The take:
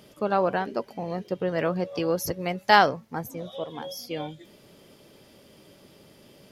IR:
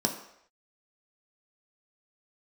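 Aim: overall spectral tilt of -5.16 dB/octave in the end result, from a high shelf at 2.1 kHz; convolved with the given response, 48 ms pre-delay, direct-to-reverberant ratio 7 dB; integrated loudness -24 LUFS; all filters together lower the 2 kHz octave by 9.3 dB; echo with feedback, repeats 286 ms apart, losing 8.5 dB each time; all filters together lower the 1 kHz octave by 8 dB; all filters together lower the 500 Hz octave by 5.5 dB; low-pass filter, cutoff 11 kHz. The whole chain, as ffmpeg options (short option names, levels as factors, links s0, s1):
-filter_complex "[0:a]lowpass=11000,equalizer=f=500:t=o:g=-4,equalizer=f=1000:t=o:g=-7,equalizer=f=2000:t=o:g=-7,highshelf=f=2100:g=-4,aecho=1:1:286|572|858|1144:0.376|0.143|0.0543|0.0206,asplit=2[s0][s1];[1:a]atrim=start_sample=2205,adelay=48[s2];[s1][s2]afir=irnorm=-1:irlink=0,volume=0.178[s3];[s0][s3]amix=inputs=2:normalize=0,volume=1.88"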